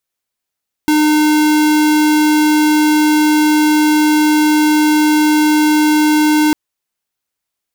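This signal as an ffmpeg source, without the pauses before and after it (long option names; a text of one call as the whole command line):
ffmpeg -f lavfi -i "aevalsrc='0.282*(2*lt(mod(304*t,1),0.5)-1)':duration=5.65:sample_rate=44100" out.wav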